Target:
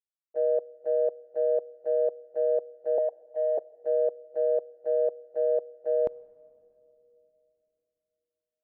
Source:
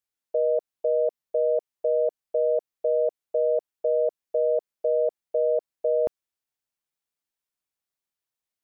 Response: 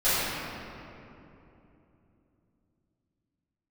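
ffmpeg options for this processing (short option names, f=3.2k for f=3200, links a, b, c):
-filter_complex "[0:a]asettb=1/sr,asplit=3[a][b][c];[a]atrim=end=2.984[d];[b]atrim=start=2.98:end=3.58,asetpts=PTS-STARTPTS,afade=t=in:d=0.004:c=qsin,afade=t=out:st=0.596:d=0.004:c=qsin,highpass=f=810:t=q:w=4.4[e];[c]atrim=start=3.576[f];[d][e]acrossfade=d=0.004:c1=hsin:c2=qsin[g];[g][f]acrossfade=d=0.004:c1=qsin:c2=hsin,agate=range=-21dB:threshold=-22dB:ratio=16:detection=peak,asplit=2[h][i];[1:a]atrim=start_sample=2205[j];[i][j]afir=irnorm=-1:irlink=0,volume=-38.5dB[k];[h][k]amix=inputs=2:normalize=0"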